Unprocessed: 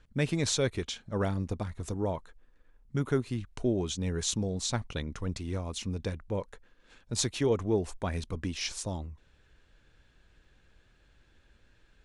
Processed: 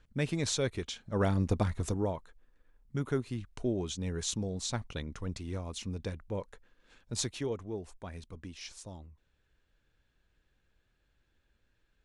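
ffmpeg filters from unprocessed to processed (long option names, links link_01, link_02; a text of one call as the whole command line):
ffmpeg -i in.wav -af "volume=6dB,afade=type=in:start_time=1:duration=0.67:silence=0.354813,afade=type=out:start_time=1.67:duration=0.47:silence=0.334965,afade=type=out:start_time=7.17:duration=0.45:silence=0.421697" out.wav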